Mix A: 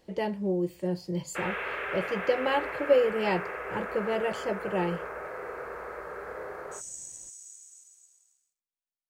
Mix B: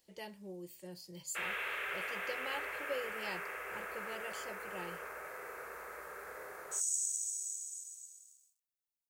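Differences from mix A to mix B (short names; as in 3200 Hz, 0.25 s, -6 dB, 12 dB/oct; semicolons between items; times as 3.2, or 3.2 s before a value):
background +7.5 dB; master: add pre-emphasis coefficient 0.9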